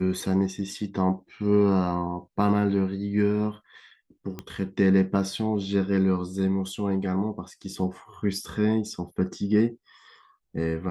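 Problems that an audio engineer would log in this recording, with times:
4.39 s: pop -20 dBFS

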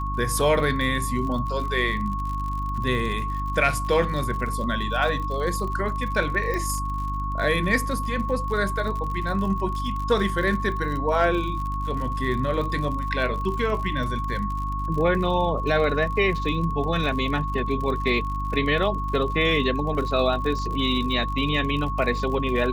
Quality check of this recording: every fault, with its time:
crackle 57 per s -31 dBFS
hum 50 Hz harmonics 6 -29 dBFS
whine 1.1 kHz -29 dBFS
6.54 s: pop -16 dBFS

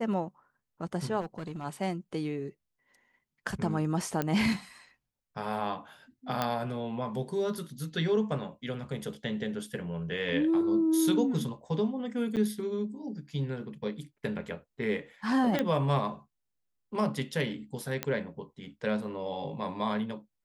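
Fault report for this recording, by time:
1.20–1.65 s: clipped -33 dBFS
4.22 s: pop -16 dBFS
6.42 s: pop -15 dBFS
12.36–12.37 s: dropout 8.3 ms
15.59 s: pop -15 dBFS
18.03 s: pop -14 dBFS

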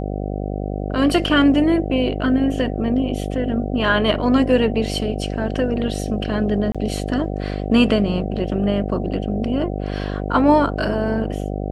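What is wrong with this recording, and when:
buzz 50 Hz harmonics 15 -25 dBFS
6.72–6.75 s: dropout 26 ms

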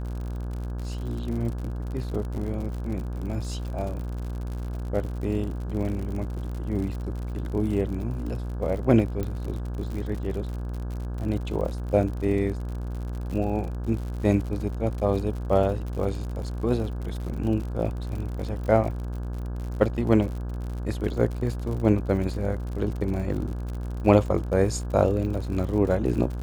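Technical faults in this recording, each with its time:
buzz 60 Hz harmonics 28 -31 dBFS
crackle 71 per s -33 dBFS
9.23 s: pop -18 dBFS

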